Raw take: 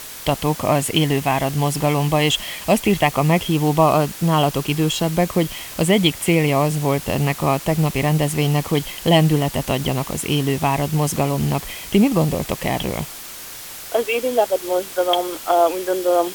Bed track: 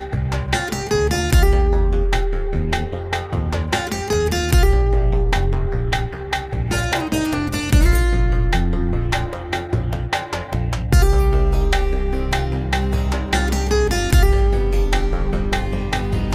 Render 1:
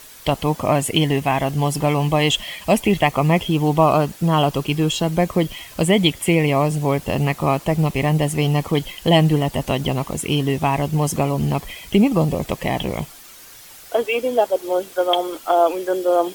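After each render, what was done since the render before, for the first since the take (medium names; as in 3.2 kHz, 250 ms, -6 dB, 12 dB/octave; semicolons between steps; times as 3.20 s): noise reduction 9 dB, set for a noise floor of -35 dBFS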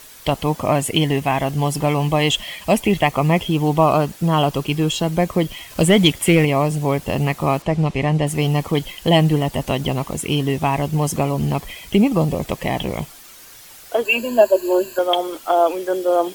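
5.70–6.45 s: waveshaping leveller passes 1; 7.62–8.27 s: distance through air 68 m; 14.05–14.99 s: rippled EQ curve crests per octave 1.4, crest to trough 18 dB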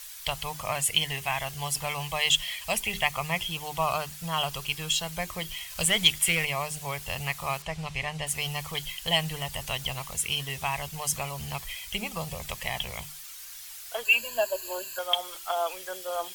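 amplifier tone stack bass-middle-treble 10-0-10; hum notches 50/100/150/200/250/300/350/400 Hz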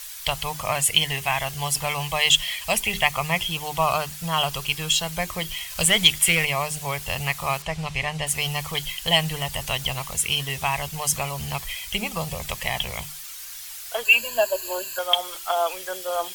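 trim +5.5 dB; peak limiter -3 dBFS, peak gain reduction 1.5 dB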